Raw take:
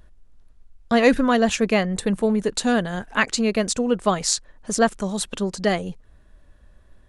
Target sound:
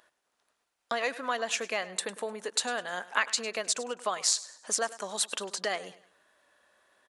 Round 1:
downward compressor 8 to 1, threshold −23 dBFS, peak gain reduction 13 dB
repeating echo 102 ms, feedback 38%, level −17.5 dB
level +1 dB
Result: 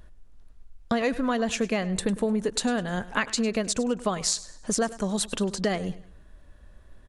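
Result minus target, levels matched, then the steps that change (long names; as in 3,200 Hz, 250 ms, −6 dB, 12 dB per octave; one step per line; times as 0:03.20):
500 Hz band +3.0 dB
add after downward compressor: high-pass filter 700 Hz 12 dB per octave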